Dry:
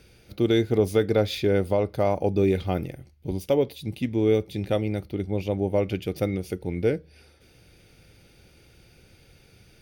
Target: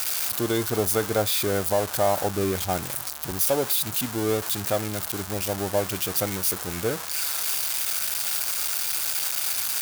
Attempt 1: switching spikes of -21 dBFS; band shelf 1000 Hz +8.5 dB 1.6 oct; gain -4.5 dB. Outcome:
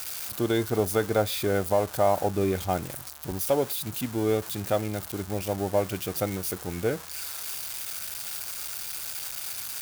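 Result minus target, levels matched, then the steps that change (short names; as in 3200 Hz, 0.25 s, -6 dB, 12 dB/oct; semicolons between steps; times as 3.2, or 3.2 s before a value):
switching spikes: distortion -8 dB
change: switching spikes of -12.5 dBFS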